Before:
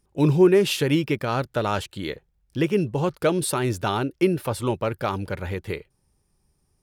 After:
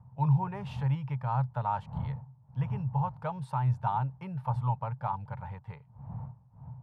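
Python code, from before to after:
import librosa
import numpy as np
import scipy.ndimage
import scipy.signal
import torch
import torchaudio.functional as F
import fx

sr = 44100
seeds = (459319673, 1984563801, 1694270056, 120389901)

y = fx.dmg_wind(x, sr, seeds[0], corner_hz=170.0, level_db=-34.0)
y = fx.double_bandpass(y, sr, hz=340.0, octaves=2.8)
y = y * 10.0 ** (3.0 / 20.0)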